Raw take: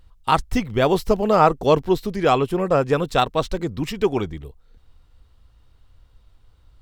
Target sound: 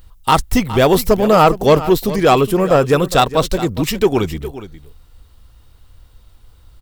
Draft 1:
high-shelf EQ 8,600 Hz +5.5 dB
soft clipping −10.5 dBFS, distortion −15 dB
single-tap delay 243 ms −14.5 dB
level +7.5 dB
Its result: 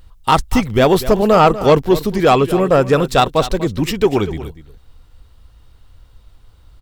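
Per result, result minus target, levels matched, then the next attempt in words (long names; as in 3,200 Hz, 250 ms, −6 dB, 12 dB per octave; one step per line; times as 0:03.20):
echo 170 ms early; 8,000 Hz band −3.5 dB
high-shelf EQ 8,600 Hz +5.5 dB
soft clipping −10.5 dBFS, distortion −15 dB
single-tap delay 413 ms −14.5 dB
level +7.5 dB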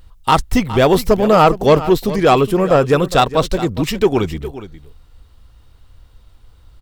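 8,000 Hz band −3.5 dB
high-shelf EQ 8,600 Hz +14.5 dB
soft clipping −10.5 dBFS, distortion −15 dB
single-tap delay 413 ms −14.5 dB
level +7.5 dB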